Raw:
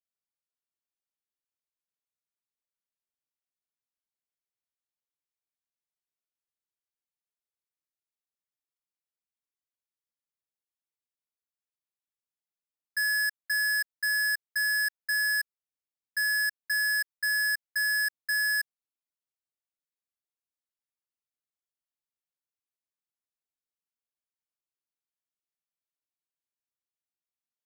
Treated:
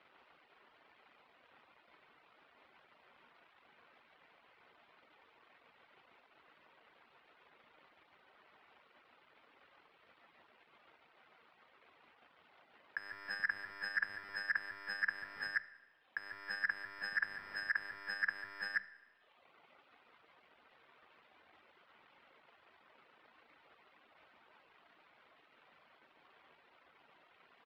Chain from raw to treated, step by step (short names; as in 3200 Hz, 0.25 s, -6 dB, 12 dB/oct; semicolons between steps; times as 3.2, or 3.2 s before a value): median filter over 5 samples; doubler 13 ms -10.5 dB; loudspeakers at several distances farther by 12 m -11 dB, 49 m -2 dB; overdrive pedal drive 26 dB, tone 4600 Hz, clips at -20.5 dBFS; reverb removal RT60 1 s; negative-ratio compressor -37 dBFS, ratio -1; high shelf 6600 Hz -11.5 dB; notch 1700 Hz, Q 26; sine folder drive 7 dB, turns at -26 dBFS; air absorption 450 m; notches 50/100/150/200 Hz; Schroeder reverb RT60 0.98 s, combs from 25 ms, DRR 16 dB; gain +4.5 dB